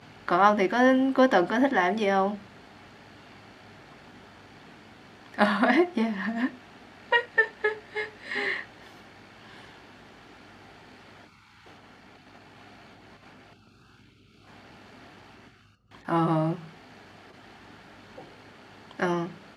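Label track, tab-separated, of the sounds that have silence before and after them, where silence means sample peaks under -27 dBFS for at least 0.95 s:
5.380000	8.600000	sound
16.090000	16.530000	sound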